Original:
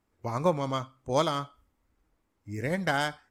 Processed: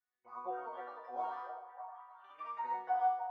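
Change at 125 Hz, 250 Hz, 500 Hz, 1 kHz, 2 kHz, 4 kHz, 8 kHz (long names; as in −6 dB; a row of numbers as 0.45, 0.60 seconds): below −40 dB, −25.0 dB, −16.0 dB, −2.5 dB, −17.5 dB, below −25 dB, below −35 dB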